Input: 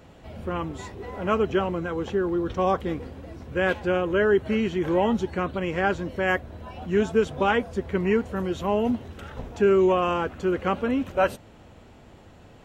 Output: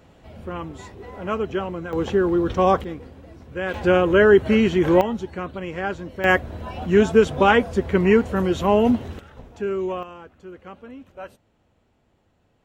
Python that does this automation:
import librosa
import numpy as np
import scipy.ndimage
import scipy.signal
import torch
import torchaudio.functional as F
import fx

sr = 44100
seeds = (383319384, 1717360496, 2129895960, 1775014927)

y = fx.gain(x, sr, db=fx.steps((0.0, -2.0), (1.93, 5.5), (2.84, -3.5), (3.74, 7.0), (5.01, -3.0), (6.24, 6.5), (9.19, -6.5), (10.03, -15.5)))